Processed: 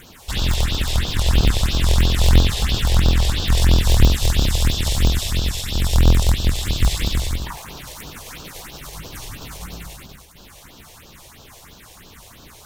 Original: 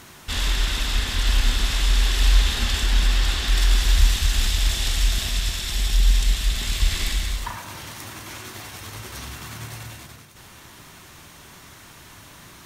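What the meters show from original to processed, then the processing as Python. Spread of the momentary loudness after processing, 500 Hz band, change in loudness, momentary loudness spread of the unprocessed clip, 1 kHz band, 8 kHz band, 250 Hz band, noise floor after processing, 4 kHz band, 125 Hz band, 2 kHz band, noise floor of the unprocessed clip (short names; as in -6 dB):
18 LU, +10.0 dB, +3.0 dB, 16 LU, +3.5 dB, +1.0 dB, +11.0 dB, -45 dBFS, +1.0 dB, +7.0 dB, -1.0 dB, -46 dBFS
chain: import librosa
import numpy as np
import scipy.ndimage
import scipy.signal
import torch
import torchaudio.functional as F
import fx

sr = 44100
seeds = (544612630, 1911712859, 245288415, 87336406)

y = fx.cycle_switch(x, sr, every=2, mode='inverted')
y = fx.phaser_stages(y, sr, stages=4, low_hz=220.0, high_hz=2100.0, hz=3.0, feedback_pct=5)
y = F.gain(torch.from_numpy(y), 3.5).numpy()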